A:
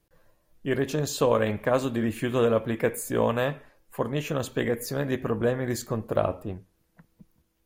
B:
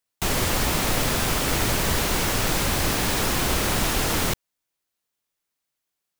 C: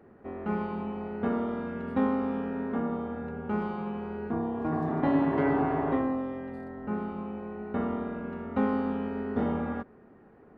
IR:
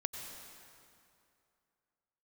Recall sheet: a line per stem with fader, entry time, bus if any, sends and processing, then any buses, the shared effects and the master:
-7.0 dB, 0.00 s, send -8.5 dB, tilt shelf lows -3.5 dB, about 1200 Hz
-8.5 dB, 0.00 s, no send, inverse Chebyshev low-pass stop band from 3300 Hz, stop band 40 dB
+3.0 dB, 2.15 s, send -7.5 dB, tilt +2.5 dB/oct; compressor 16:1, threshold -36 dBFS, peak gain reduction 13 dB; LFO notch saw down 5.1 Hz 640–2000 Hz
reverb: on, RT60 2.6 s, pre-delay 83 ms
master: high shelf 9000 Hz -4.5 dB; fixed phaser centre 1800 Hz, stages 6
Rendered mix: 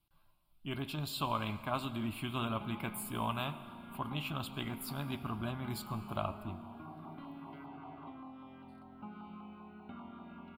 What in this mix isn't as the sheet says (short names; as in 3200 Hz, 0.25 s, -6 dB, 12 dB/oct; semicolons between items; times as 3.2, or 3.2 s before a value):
stem B: muted; stem C +3.0 dB -> -6.0 dB